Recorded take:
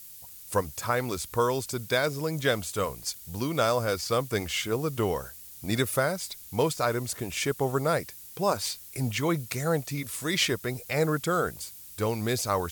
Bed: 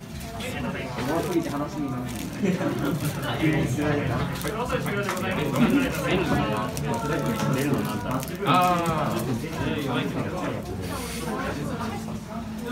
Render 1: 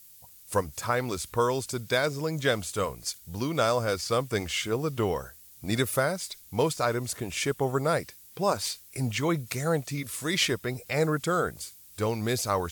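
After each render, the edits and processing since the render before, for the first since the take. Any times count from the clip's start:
noise reduction from a noise print 6 dB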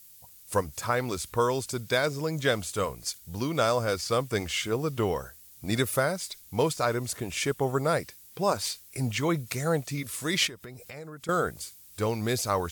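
0:10.47–0:11.29: downward compressor 5 to 1, threshold −40 dBFS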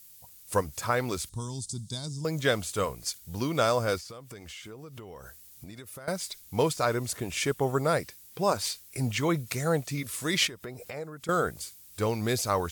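0:01.29–0:02.25: drawn EQ curve 200 Hz 0 dB, 350 Hz −12 dB, 500 Hz −24 dB, 890 Hz −14 dB, 1,400 Hz −26 dB, 2,400 Hz −26 dB, 3,600 Hz −5 dB, 9,200 Hz +2 dB, 13,000 Hz −22 dB
0:03.98–0:06.08: downward compressor 12 to 1, threshold −40 dBFS
0:10.63–0:11.04: parametric band 630 Hz +6.5 dB 2.4 octaves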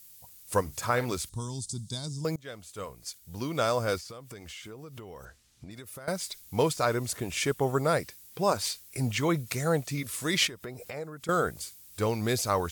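0:00.61–0:01.13: double-tracking delay 49 ms −14 dB
0:02.36–0:04.07: fade in, from −23.5 dB
0:05.25–0:05.71: high-frequency loss of the air 89 metres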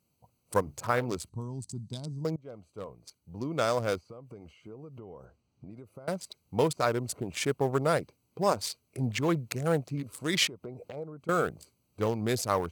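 adaptive Wiener filter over 25 samples
high-pass filter 96 Hz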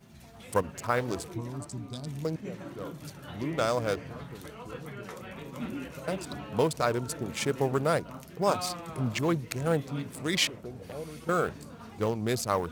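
mix in bed −16.5 dB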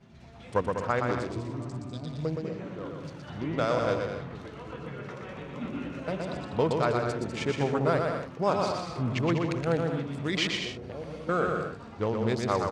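high-frequency loss of the air 130 metres
bouncing-ball delay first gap 120 ms, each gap 0.65×, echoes 5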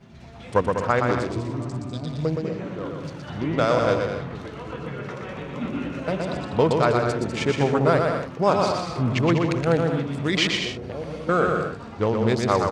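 level +6.5 dB

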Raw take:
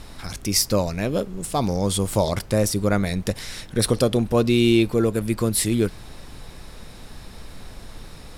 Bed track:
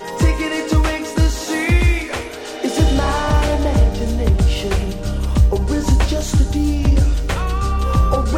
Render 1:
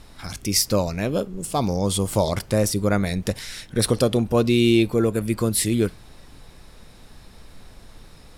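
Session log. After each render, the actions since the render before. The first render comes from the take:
noise reduction from a noise print 6 dB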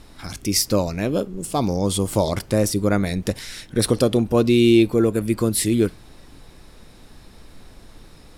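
parametric band 310 Hz +4.5 dB 0.75 octaves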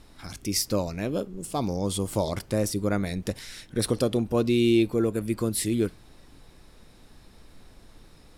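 level −6.5 dB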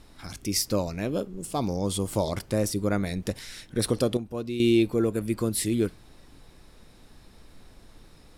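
0:04.17–0:04.60: clip gain −9 dB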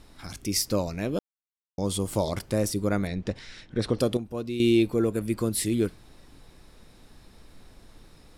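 0:01.19–0:01.78: silence
0:03.07–0:03.99: high-frequency loss of the air 120 metres

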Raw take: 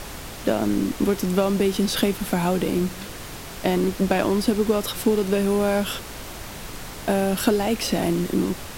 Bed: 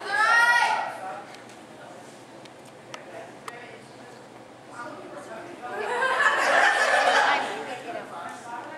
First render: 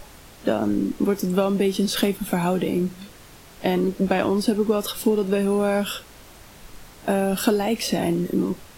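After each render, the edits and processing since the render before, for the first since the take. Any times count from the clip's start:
noise reduction from a noise print 10 dB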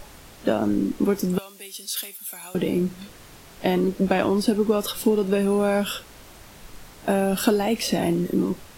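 0:01.38–0:02.55: first difference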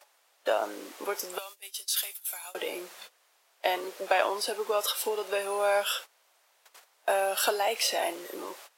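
noise gate −38 dBFS, range −18 dB
high-pass filter 560 Hz 24 dB per octave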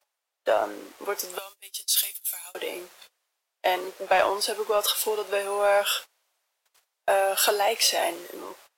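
leveller curve on the samples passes 1
multiband upward and downward expander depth 40%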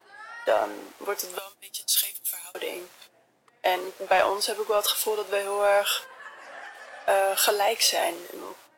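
mix in bed −22.5 dB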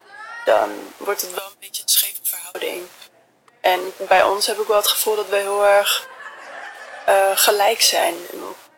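level +7.5 dB
brickwall limiter −3 dBFS, peak gain reduction 1 dB

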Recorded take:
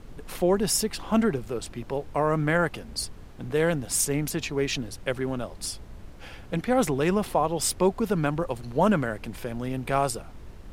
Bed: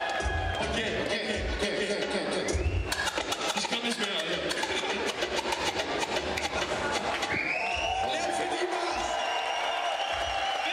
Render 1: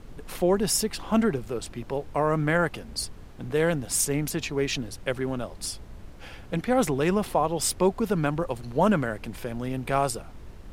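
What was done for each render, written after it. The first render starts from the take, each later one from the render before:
no processing that can be heard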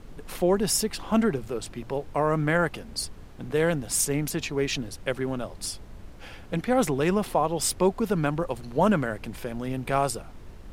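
hum removal 60 Hz, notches 2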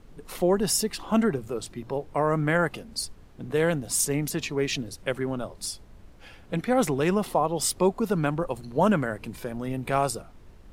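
noise reduction from a noise print 6 dB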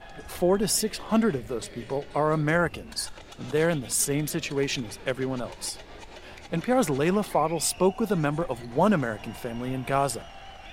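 mix in bed −16 dB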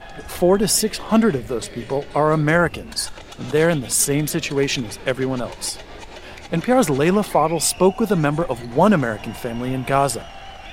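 level +7 dB

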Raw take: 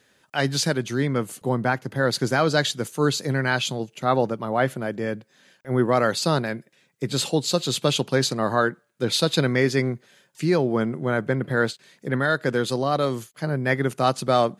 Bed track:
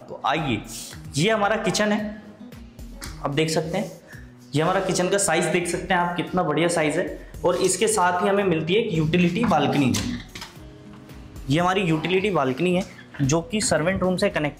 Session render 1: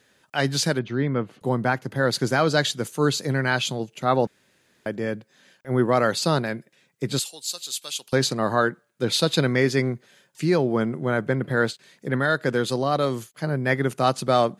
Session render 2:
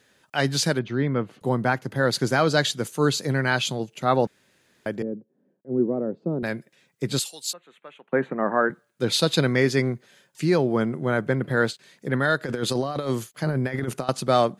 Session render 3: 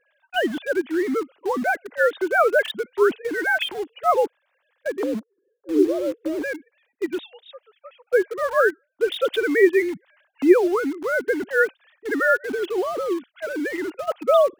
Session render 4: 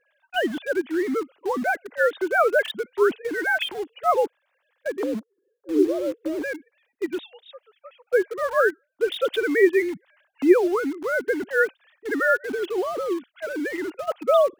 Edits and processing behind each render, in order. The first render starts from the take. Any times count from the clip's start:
0:00.79–0:01.41: high-frequency loss of the air 310 metres; 0:04.27–0:04.86: fill with room tone; 0:07.19–0:08.13: first difference
0:05.02–0:06.43: flat-topped band-pass 280 Hz, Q 0.99; 0:07.53–0:08.70: elliptic band-pass filter 170–2,000 Hz; 0:12.41–0:14.09: compressor whose output falls as the input rises −25 dBFS, ratio −0.5
three sine waves on the formant tracks; in parallel at −11 dB: bit reduction 5 bits
level −1.5 dB

